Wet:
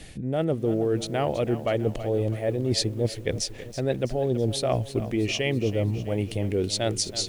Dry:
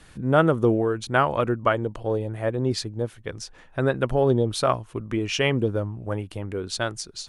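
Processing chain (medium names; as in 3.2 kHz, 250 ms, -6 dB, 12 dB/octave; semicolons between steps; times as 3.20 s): high-order bell 1.2 kHz -13 dB 1 oct; reverse; compression 16:1, threshold -29 dBFS, peak gain reduction 16 dB; reverse; bit-crushed delay 326 ms, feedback 55%, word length 9-bit, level -13 dB; trim +8 dB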